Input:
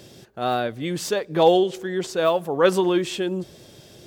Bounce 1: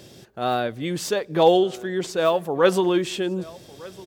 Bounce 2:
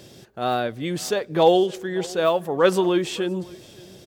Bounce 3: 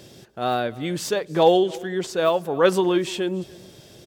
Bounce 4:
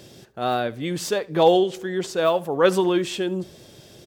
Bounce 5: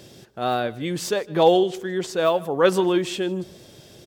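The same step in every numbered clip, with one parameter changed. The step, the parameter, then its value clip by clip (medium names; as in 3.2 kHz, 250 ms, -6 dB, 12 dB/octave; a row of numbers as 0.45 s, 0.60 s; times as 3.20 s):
delay, time: 1204 ms, 565 ms, 293 ms, 75 ms, 155 ms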